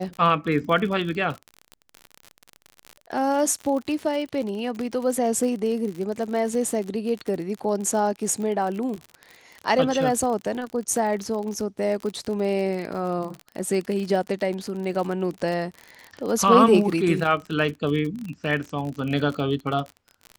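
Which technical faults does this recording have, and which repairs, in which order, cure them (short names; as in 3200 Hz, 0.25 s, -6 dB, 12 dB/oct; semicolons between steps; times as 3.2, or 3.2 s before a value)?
crackle 44/s -29 dBFS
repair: de-click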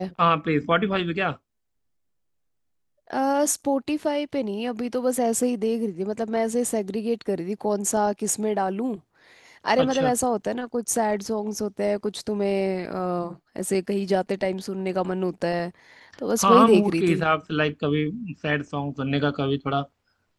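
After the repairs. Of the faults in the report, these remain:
none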